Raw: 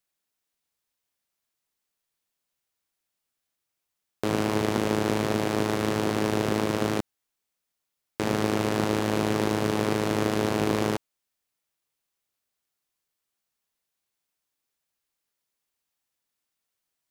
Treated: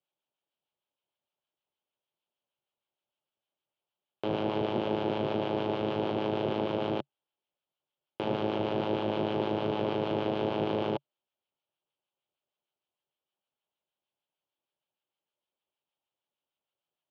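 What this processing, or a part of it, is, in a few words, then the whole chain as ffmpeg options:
guitar amplifier with harmonic tremolo: -filter_complex "[0:a]acrossover=split=990[link_01][link_02];[link_01]aeval=exprs='val(0)*(1-0.5/2+0.5/2*cos(2*PI*6.5*n/s))':channel_layout=same[link_03];[link_02]aeval=exprs='val(0)*(1-0.5/2-0.5/2*cos(2*PI*6.5*n/s))':channel_layout=same[link_04];[link_03][link_04]amix=inputs=2:normalize=0,asoftclip=type=tanh:threshold=-19.5dB,highpass=94,equalizer=frequency=140:width_type=q:width=4:gain=5,equalizer=frequency=370:width_type=q:width=4:gain=6,equalizer=frequency=580:width_type=q:width=4:gain=9,equalizer=frequency=860:width_type=q:width=4:gain=7,equalizer=frequency=1900:width_type=q:width=4:gain=-9,equalizer=frequency=3100:width_type=q:width=4:gain=8,lowpass=frequency=3600:width=0.5412,lowpass=frequency=3600:width=1.3066,volume=-4dB"

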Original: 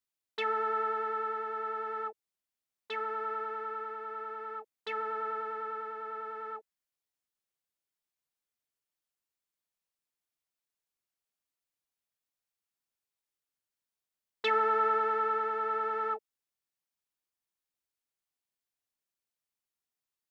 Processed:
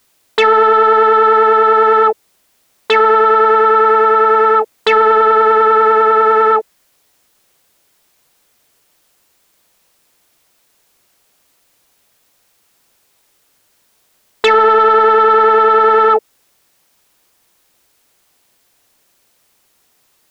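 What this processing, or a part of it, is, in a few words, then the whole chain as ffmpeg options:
mastering chain: -af "equalizer=frequency=510:width_type=o:width=1.7:gain=3.5,acompressor=threshold=-31dB:ratio=3,asoftclip=type=tanh:threshold=-24dB,alimiter=level_in=34dB:limit=-1dB:release=50:level=0:latency=1,volume=-2dB"

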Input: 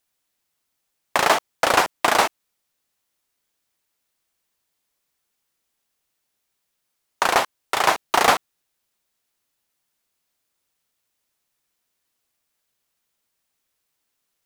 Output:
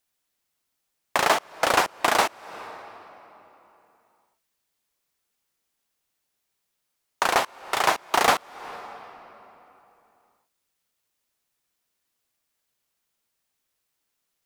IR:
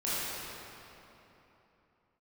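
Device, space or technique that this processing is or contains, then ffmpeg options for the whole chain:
ducked reverb: -filter_complex "[0:a]asplit=3[link_01][link_02][link_03];[1:a]atrim=start_sample=2205[link_04];[link_02][link_04]afir=irnorm=-1:irlink=0[link_05];[link_03]apad=whole_len=637386[link_06];[link_05][link_06]sidechaincompress=threshold=-36dB:ratio=12:attack=26:release=230,volume=-19dB[link_07];[link_01][link_07]amix=inputs=2:normalize=0,volume=-3dB"

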